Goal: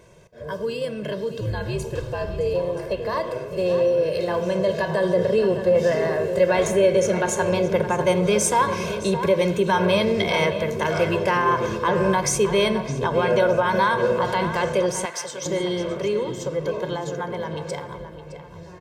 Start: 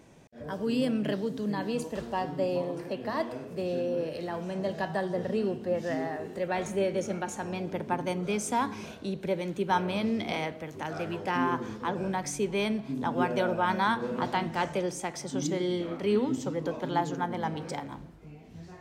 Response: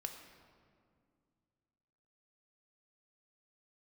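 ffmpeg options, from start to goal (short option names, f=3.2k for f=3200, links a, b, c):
-filter_complex "[0:a]alimiter=limit=-23.5dB:level=0:latency=1:release=62,asplit=3[a][b][c];[a]afade=t=out:st=1.4:d=0.02[d];[b]afreqshift=-96,afade=t=in:st=1.4:d=0.02,afade=t=out:st=2.53:d=0.02[e];[c]afade=t=in:st=2.53:d=0.02[f];[d][e][f]amix=inputs=3:normalize=0,asplit=2[g][h];[1:a]atrim=start_sample=2205[i];[h][i]afir=irnorm=-1:irlink=0,volume=-4dB[j];[g][j]amix=inputs=2:normalize=0,dynaudnorm=f=270:g=31:m=8dB,aecho=1:1:1.9:0.81,asplit=2[k][l];[l]adelay=614,lowpass=f=3.8k:p=1,volume=-10.5dB,asplit=2[m][n];[n]adelay=614,lowpass=f=3.8k:p=1,volume=0.37,asplit=2[o][p];[p]adelay=614,lowpass=f=3.8k:p=1,volume=0.37,asplit=2[q][r];[r]adelay=614,lowpass=f=3.8k:p=1,volume=0.37[s];[k][m][o][q][s]amix=inputs=5:normalize=0,asettb=1/sr,asplit=3[t][u][v];[t]atrim=end=12.844[w];[u]atrim=start=12.84:end=13.4,asetpts=PTS-STARTPTS,afade=t=in:d=0.004:c=qsin,afade=t=out:st=0.556:d=0.004:c=qsin,acrossover=split=7200[x][y];[y]acompressor=threshold=-58dB:ratio=4:attack=1:release=60[z];[x][z]amix=inputs=2:normalize=0[aa];[v]atrim=start=13.396[ab];[w][aa]acrossfade=d=0.004:c1=hsin:c2=qsin[ac];[ac][ab]acrossfade=d=0.004:c1=qsin:c2=hsin,asettb=1/sr,asplit=3[ad][ae][af];[ad]atrim=end=15.054[ag];[ae]atrim=start=15.05:end=15.46,asetpts=PTS-STARTPTS,afade=t=in:d=0.004:c=qsin,afade=t=out:st=0.406:d=0.004:c=qsin,highpass=f=1.1k:p=1[ah];[af]atrim=start=15.456[ai];[ag][ah]acrossfade=d=0.004:c1=hsin:c2=qsin[aj];[aj][ai]acrossfade=d=0.004:c1=qsin:c2=hsin"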